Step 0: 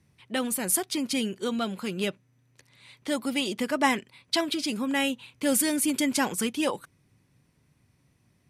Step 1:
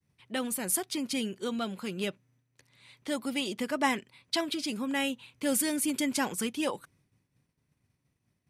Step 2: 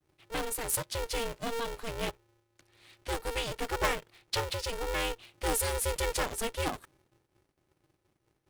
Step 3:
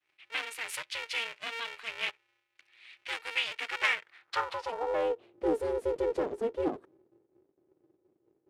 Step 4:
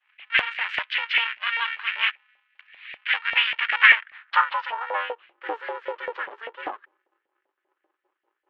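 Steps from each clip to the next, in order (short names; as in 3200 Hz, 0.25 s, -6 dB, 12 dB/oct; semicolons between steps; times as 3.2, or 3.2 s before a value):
expander -59 dBFS; gain -4 dB
low shelf 79 Hz +11.5 dB; polarity switched at an audio rate 230 Hz; gain -2 dB
band-pass sweep 2400 Hz -> 380 Hz, 3.87–5.33; gain +9 dB
speaker cabinet 340–3200 Hz, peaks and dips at 450 Hz -5 dB, 690 Hz -10 dB, 1700 Hz +5 dB, 3000 Hz +5 dB; LFO high-pass saw up 5.1 Hz 670–2000 Hz; gain +7 dB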